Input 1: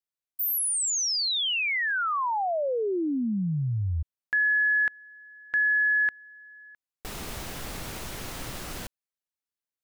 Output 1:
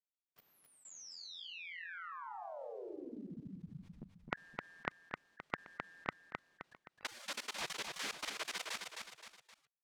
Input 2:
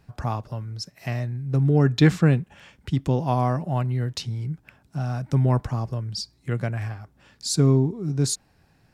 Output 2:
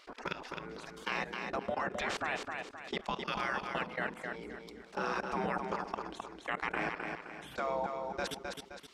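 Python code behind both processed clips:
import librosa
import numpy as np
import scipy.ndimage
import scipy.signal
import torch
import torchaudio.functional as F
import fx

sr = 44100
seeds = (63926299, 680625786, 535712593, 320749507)

y = fx.spec_gate(x, sr, threshold_db=-25, keep='weak')
y = fx.low_shelf_res(y, sr, hz=120.0, db=-6.5, q=1.5)
y = fx.level_steps(y, sr, step_db=23)
y = fx.spacing_loss(y, sr, db_at_10k=22)
y = fx.echo_feedback(y, sr, ms=261, feedback_pct=18, wet_db=-9.5)
y = fx.env_flatten(y, sr, amount_pct=50)
y = y * librosa.db_to_amplitude(13.0)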